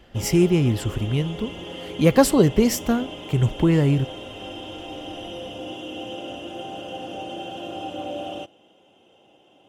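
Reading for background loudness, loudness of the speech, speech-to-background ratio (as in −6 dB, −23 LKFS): −35.0 LKFS, −20.5 LKFS, 14.5 dB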